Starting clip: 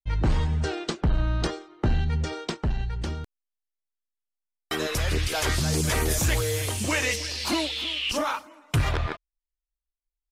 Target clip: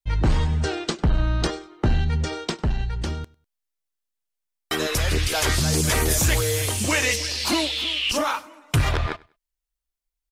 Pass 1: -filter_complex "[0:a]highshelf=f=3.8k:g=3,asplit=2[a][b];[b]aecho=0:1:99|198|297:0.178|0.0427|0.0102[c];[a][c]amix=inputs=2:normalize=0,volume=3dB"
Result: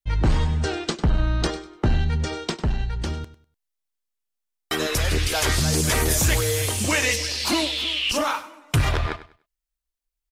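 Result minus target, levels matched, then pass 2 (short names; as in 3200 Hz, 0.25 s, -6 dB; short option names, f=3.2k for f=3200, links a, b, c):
echo-to-direct +9 dB
-filter_complex "[0:a]highshelf=f=3.8k:g=3,asplit=2[a][b];[b]aecho=0:1:99|198:0.0631|0.0151[c];[a][c]amix=inputs=2:normalize=0,volume=3dB"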